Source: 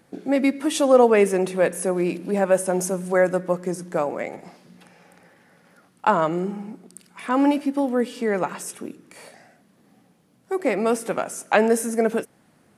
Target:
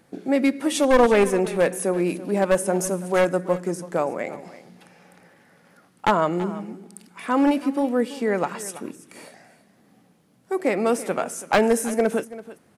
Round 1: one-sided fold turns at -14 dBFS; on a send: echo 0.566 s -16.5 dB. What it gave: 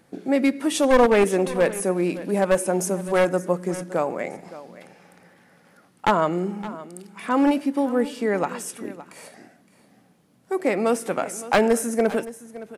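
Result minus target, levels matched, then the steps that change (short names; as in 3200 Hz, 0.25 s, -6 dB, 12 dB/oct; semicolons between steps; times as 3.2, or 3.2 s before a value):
echo 0.234 s late
change: echo 0.332 s -16.5 dB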